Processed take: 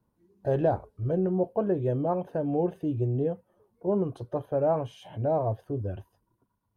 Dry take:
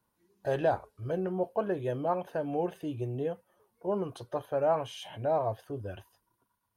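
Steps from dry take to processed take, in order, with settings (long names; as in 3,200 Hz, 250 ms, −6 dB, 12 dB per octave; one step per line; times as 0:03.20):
tilt shelving filter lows +9 dB, about 780 Hz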